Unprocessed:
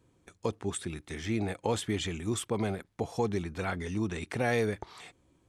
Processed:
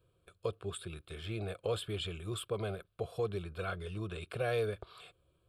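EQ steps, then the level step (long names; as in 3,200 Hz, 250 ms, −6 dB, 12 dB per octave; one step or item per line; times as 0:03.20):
phaser with its sweep stopped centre 1,300 Hz, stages 8
−2.0 dB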